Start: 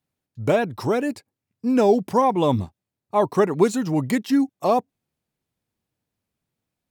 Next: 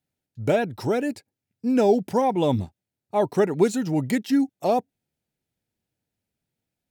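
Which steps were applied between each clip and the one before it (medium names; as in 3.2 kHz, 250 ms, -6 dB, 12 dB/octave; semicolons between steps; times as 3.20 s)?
peaking EQ 1.1 kHz -14.5 dB 0.21 oct; trim -1.5 dB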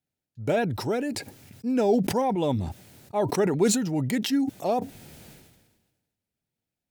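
decay stretcher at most 45 dB/s; trim -4 dB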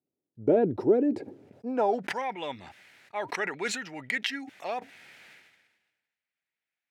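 band-pass sweep 360 Hz -> 2 kHz, 1.39–2.15 s; trim +8.5 dB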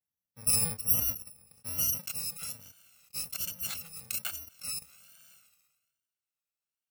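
bit-reversed sample order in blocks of 128 samples; vibrato 1.2 Hz 98 cents; spectral gate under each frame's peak -30 dB strong; trim -4 dB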